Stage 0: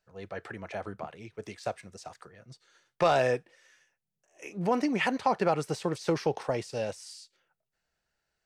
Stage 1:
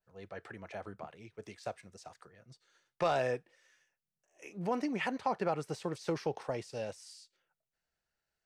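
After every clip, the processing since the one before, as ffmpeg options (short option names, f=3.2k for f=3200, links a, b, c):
-af "adynamicequalizer=threshold=0.01:dfrequency=2500:dqfactor=0.7:tfrequency=2500:tqfactor=0.7:attack=5:release=100:ratio=0.375:range=2:mode=cutabove:tftype=highshelf,volume=-6.5dB"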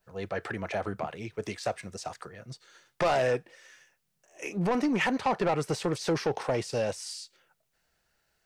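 -filter_complex "[0:a]asplit=2[a][b];[b]acompressor=threshold=-40dB:ratio=6,volume=-1dB[c];[a][c]amix=inputs=2:normalize=0,asoftclip=type=tanh:threshold=-28.5dB,volume=8dB"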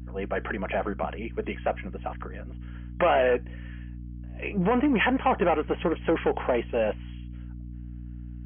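-af "afftfilt=real='re*between(b*sr/4096,170,3300)':imag='im*between(b*sr/4096,170,3300)':win_size=4096:overlap=0.75,aeval=exprs='val(0)+0.00891*(sin(2*PI*60*n/s)+sin(2*PI*2*60*n/s)/2+sin(2*PI*3*60*n/s)/3+sin(2*PI*4*60*n/s)/4+sin(2*PI*5*60*n/s)/5)':c=same,volume=4dB"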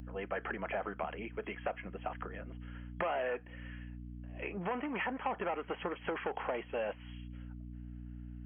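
-filter_complex "[0:a]equalizer=f=86:w=0.63:g=-6,acrossover=split=710|2100[a][b][c];[a]acompressor=threshold=-38dB:ratio=4[d];[b]acompressor=threshold=-35dB:ratio=4[e];[c]acompressor=threshold=-50dB:ratio=4[f];[d][e][f]amix=inputs=3:normalize=0,volume=-2.5dB"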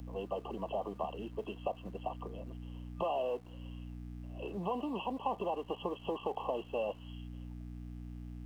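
-filter_complex "[0:a]afftfilt=real='re*(1-between(b*sr/4096,1200,2600))':imag='im*(1-between(b*sr/4096,1200,2600))':win_size=4096:overlap=0.75,acrossover=split=270|670[a][b][c];[a]aeval=exprs='val(0)*gte(abs(val(0)),0.00158)':c=same[d];[d][b][c]amix=inputs=3:normalize=0,volume=1dB"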